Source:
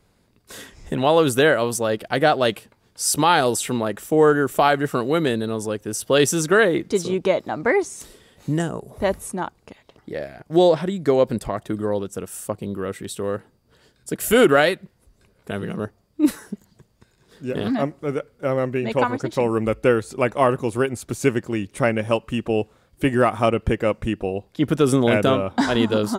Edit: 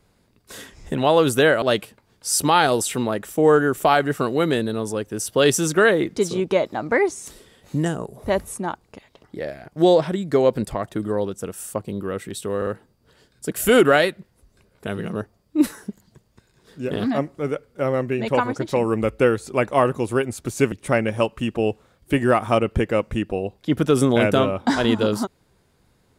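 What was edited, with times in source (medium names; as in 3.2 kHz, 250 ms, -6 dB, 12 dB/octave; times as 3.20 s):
1.62–2.36 s: delete
13.31 s: stutter 0.05 s, 3 plays
21.36–21.63 s: delete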